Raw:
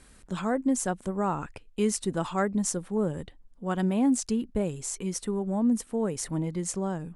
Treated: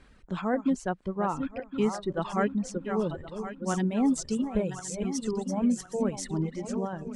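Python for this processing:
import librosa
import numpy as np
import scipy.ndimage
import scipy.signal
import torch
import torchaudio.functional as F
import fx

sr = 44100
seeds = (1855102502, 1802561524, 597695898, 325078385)

y = fx.reverse_delay_fb(x, sr, ms=533, feedback_pct=64, wet_db=-7.0)
y = fx.lowpass(y, sr, hz=fx.steps((0.0, 3600.0), (3.65, 7100.0), (6.4, 3800.0)), slope=12)
y = fx.dereverb_blind(y, sr, rt60_s=1.6)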